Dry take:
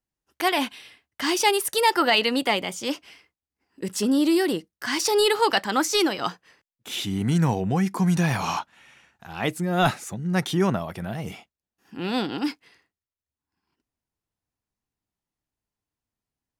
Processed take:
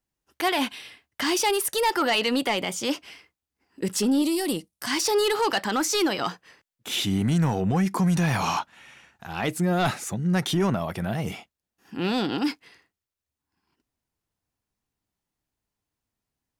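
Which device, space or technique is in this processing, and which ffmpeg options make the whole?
soft clipper into limiter: -filter_complex "[0:a]asoftclip=type=tanh:threshold=-15dB,alimiter=limit=-20dB:level=0:latency=1:release=78,asettb=1/sr,asplit=3[link_01][link_02][link_03];[link_01]atrim=end=4.224[link_04];[link_02]atrim=start=4.22:end=4.91,asetpts=PTS-STARTPTS,afade=type=in:duration=0.004:curve=qsin,afade=type=out:start_time=0.686:duration=0.004:curve=qsin,equalizer=frequency=400:width_type=o:width=0.67:gain=-6,equalizer=frequency=1600:width_type=o:width=0.67:gain=-9,equalizer=frequency=10000:width_type=o:width=0.67:gain=8[link_05];[link_03]atrim=start=4.906[link_06];[link_04][link_05]acrossfade=duration=0.004:curve1=hsin:curve2=qsin[link_07];[link_07][link_06]acrossfade=duration=0.004:curve1=qsin:curve2=hsin,volume=3.5dB"

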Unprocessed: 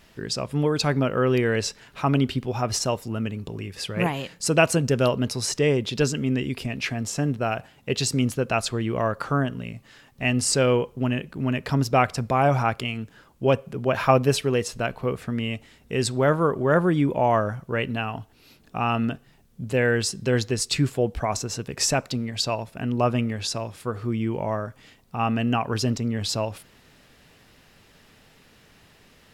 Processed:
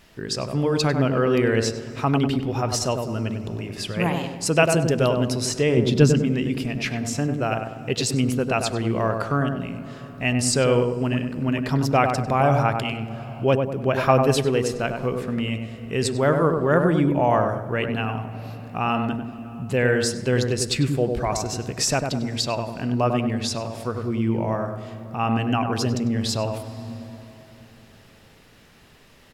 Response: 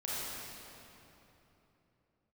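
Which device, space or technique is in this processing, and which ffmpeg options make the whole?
ducked reverb: -filter_complex "[0:a]asettb=1/sr,asplit=3[link_01][link_02][link_03];[link_01]atrim=end=5.774[link_04];[link_02]atrim=start=5.77:end=6.19,asetpts=PTS-STARTPTS,afade=type=in:duration=0.004:curve=qsin,afade=type=out:start_time=0.416:duration=0.004:curve=qsin,equalizer=frequency=170:width=0.51:gain=9.5[link_05];[link_03]atrim=start=6.186[link_06];[link_04][link_05]acrossfade=duration=0.004:curve1=hsin:curve2=qsin[link_07];[link_07][link_06]acrossfade=duration=0.004:curve1=qsin:curve2=hsin,asplit=2[link_08][link_09];[link_09]adelay=98,lowpass=frequency=1200:poles=1,volume=-4dB,asplit=2[link_10][link_11];[link_11]adelay=98,lowpass=frequency=1200:poles=1,volume=0.48,asplit=2[link_12][link_13];[link_13]adelay=98,lowpass=frequency=1200:poles=1,volume=0.48,asplit=2[link_14][link_15];[link_15]adelay=98,lowpass=frequency=1200:poles=1,volume=0.48,asplit=2[link_16][link_17];[link_17]adelay=98,lowpass=frequency=1200:poles=1,volume=0.48,asplit=2[link_18][link_19];[link_19]adelay=98,lowpass=frequency=1200:poles=1,volume=0.48[link_20];[link_08][link_10][link_12][link_14][link_16][link_18][link_20]amix=inputs=7:normalize=0,asplit=3[link_21][link_22][link_23];[1:a]atrim=start_sample=2205[link_24];[link_22][link_24]afir=irnorm=-1:irlink=0[link_25];[link_23]apad=whole_len=1319651[link_26];[link_25][link_26]sidechaincompress=threshold=-31dB:ratio=8:attack=40:release=472,volume=-13.5dB[link_27];[link_21][link_27]amix=inputs=2:normalize=0"

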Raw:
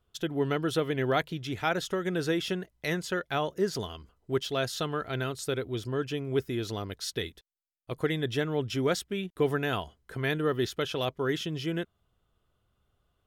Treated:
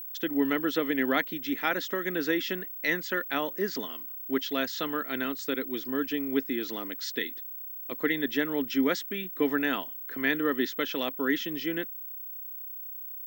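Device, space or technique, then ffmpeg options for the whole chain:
old television with a line whistle: -af "highpass=frequency=220:width=0.5412,highpass=frequency=220:width=1.3066,equalizer=frequency=270:width_type=q:width=4:gain=9,equalizer=frequency=400:width_type=q:width=4:gain=-4,equalizer=frequency=710:width_type=q:width=4:gain=-5,equalizer=frequency=1900:width_type=q:width=4:gain=9,lowpass=frequency=6700:width=0.5412,lowpass=frequency=6700:width=1.3066,aeval=exprs='val(0)+0.0141*sin(2*PI*15734*n/s)':channel_layout=same"

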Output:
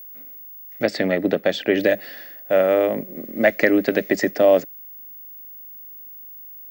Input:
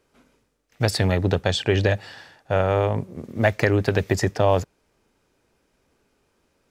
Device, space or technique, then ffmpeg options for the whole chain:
old television with a line whistle: -filter_complex "[0:a]highpass=frequency=190:width=0.5412,highpass=frequency=190:width=1.3066,equalizer=frequency=210:width_type=q:width=4:gain=4,equalizer=frequency=300:width_type=q:width=4:gain=8,equalizer=frequency=580:width_type=q:width=4:gain=9,equalizer=frequency=940:width_type=q:width=4:gain=-10,equalizer=frequency=2000:width_type=q:width=4:gain=9,lowpass=frequency=7300:width=0.5412,lowpass=frequency=7300:width=1.3066,aeval=exprs='val(0)+0.0158*sin(2*PI*15625*n/s)':channel_layout=same,asettb=1/sr,asplit=3[link_01][link_02][link_03];[link_01]atrim=end=0.834[link_04];[link_02]atrim=start=0.83:end=1.8,asetpts=PTS-STARTPTS,afade=type=in:duration=0.004:curve=qsin,afade=type=out:start_time=0.966:duration=0.004:curve=qsin,aemphasis=mode=reproduction:type=cd[link_05];[link_03]atrim=start=1.796[link_06];[link_04][link_05]acrossfade=duration=0.004:curve1=hsin:curve2=qsin[link_07];[link_07][link_06]acrossfade=duration=0.004:curve1=qsin:curve2=hsin,volume=-1dB"

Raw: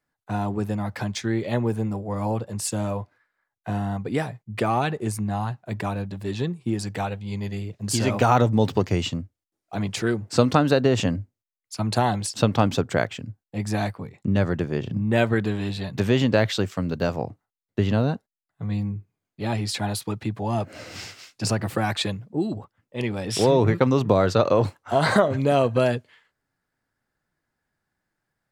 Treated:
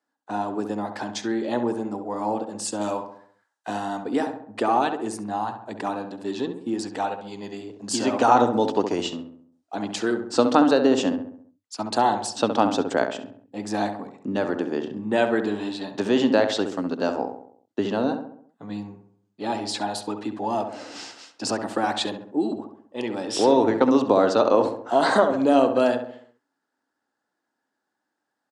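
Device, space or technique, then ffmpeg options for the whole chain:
car door speaker: -filter_complex "[0:a]highpass=100,equalizer=frequency=150:width_type=q:width=4:gain=-10,equalizer=frequency=280:width_type=q:width=4:gain=8,equalizer=frequency=850:width_type=q:width=4:gain=5,equalizer=frequency=2200:width_type=q:width=4:gain=-8,lowpass=frequency=8900:width=0.5412,lowpass=frequency=8900:width=1.3066,asettb=1/sr,asplit=3[link_01][link_02][link_03];[link_01]atrim=end=2.814[link_04];[link_02]atrim=start=2.81:end=4.03,asetpts=PTS-STARTPTS,afade=type=in:duration=0.004:curve=qsin,afade=type=out:start_time=1.216:duration=0.004:curve=qsin,highshelf=frequency=2100:gain=11[link_05];[link_03]atrim=start=4.026[link_06];[link_04][link_05]acrossfade=duration=0.004:curve1=hsin:curve2=qsin[link_07];[link_07][link_06]acrossfade=duration=0.004:curve1=qsin:curve2=hsin,highpass=260,asplit=2[link_08][link_09];[link_09]adelay=67,lowpass=frequency=1800:poles=1,volume=-7dB,asplit=2[link_10][link_11];[link_11]adelay=67,lowpass=frequency=1800:poles=1,volume=0.52,asplit=2[link_12][link_13];[link_13]adelay=67,lowpass=frequency=1800:poles=1,volume=0.52,asplit=2[link_14][link_15];[link_15]adelay=67,lowpass=frequency=1800:poles=1,volume=0.52,asplit=2[link_16][link_17];[link_17]adelay=67,lowpass=frequency=1800:poles=1,volume=0.52,asplit=2[link_18][link_19];[link_19]adelay=67,lowpass=frequency=1800:poles=1,volume=0.52[link_20];[link_08][link_10][link_12][link_14][link_16][link_18][link_20]amix=inputs=7:normalize=0"

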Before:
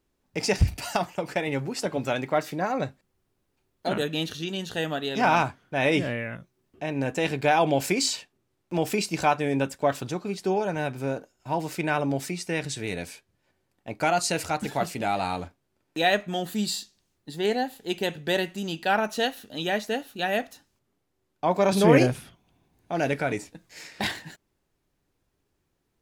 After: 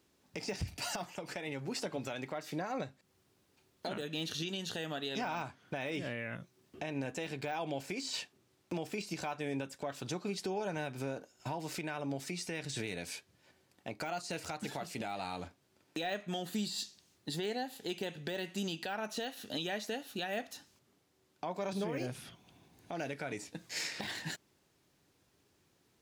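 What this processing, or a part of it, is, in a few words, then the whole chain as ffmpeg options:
broadcast voice chain: -af "highpass=91,deesser=0.8,acompressor=threshold=-38dB:ratio=3,equalizer=frequency=4900:width_type=o:width=2:gain=5,alimiter=level_in=7dB:limit=-24dB:level=0:latency=1:release=296,volume=-7dB,volume=4dB"

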